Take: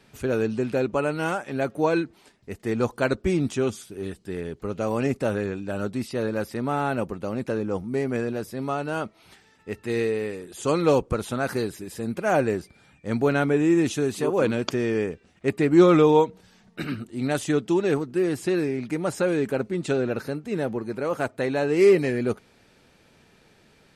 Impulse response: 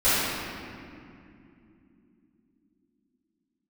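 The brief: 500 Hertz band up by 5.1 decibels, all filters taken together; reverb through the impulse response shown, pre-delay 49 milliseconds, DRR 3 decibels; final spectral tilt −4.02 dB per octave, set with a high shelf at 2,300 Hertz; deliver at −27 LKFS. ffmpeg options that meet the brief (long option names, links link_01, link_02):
-filter_complex "[0:a]equalizer=frequency=500:width_type=o:gain=6,highshelf=frequency=2300:gain=8,asplit=2[link_01][link_02];[1:a]atrim=start_sample=2205,adelay=49[link_03];[link_02][link_03]afir=irnorm=-1:irlink=0,volume=-21.5dB[link_04];[link_01][link_04]amix=inputs=2:normalize=0,volume=-8dB"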